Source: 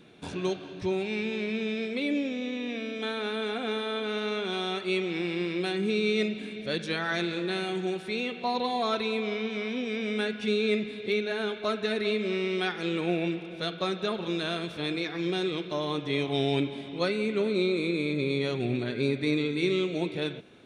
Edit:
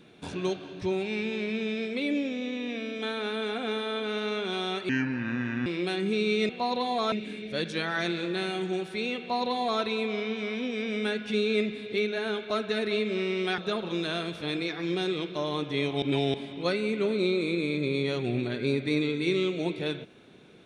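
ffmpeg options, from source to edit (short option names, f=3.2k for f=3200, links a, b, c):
-filter_complex "[0:a]asplit=8[a][b][c][d][e][f][g][h];[a]atrim=end=4.894[i];[b]atrim=start=4.89:end=5.43,asetpts=PTS-STARTPTS,asetrate=30870,aresample=44100[j];[c]atrim=start=5.426:end=6.262[k];[d]atrim=start=8.328:end=8.962[l];[e]atrim=start=6.258:end=12.722[m];[f]atrim=start=13.938:end=16.382[n];[g]atrim=start=16.378:end=16.702,asetpts=PTS-STARTPTS,areverse[o];[h]atrim=start=16.698[p];[i][j]acrossfade=d=0.004:c1=hsin:c2=hsin[q];[q][k]acrossfade=d=0.004:c1=hsin:c2=hsin[r];[r][l]acrossfade=d=0.004:c1=hsin:c2=hsin[s];[s][m]acrossfade=d=0.004:c1=hsin:c2=hsin[t];[t][n]acrossfade=d=0.004:c1=hsin:c2=hsin[u];[u][o]acrossfade=d=0.004:c1=hsin:c2=hsin[v];[v][p]acrossfade=d=0.004:c1=hsin:c2=hsin"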